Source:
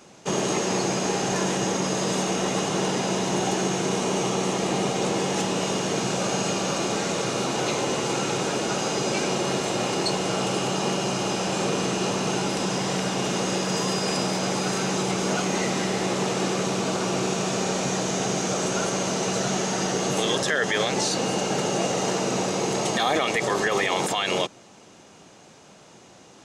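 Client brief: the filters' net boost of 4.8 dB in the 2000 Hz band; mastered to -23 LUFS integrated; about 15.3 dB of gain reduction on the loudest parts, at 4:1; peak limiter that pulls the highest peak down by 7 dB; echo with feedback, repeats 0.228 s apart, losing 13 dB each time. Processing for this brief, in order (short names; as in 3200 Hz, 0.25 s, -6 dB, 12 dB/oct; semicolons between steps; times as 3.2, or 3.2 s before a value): bell 2000 Hz +6 dB; compressor 4:1, threshold -35 dBFS; limiter -28.5 dBFS; feedback echo 0.228 s, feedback 22%, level -13 dB; gain +14 dB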